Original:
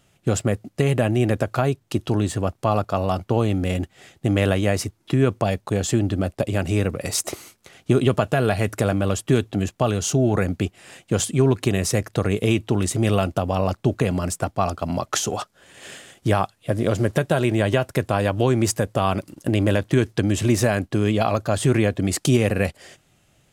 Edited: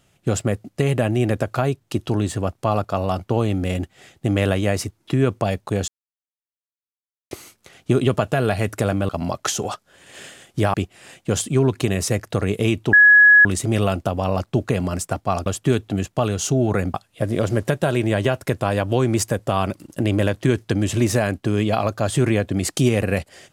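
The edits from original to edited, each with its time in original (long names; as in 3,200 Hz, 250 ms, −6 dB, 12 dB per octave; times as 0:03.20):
0:05.88–0:07.31: silence
0:09.09–0:10.57: swap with 0:14.77–0:16.42
0:12.76: insert tone 1,680 Hz −7 dBFS 0.52 s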